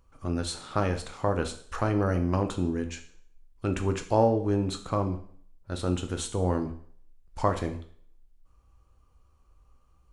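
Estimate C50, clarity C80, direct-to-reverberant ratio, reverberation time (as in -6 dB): 11.5 dB, 15.0 dB, 6.0 dB, 0.55 s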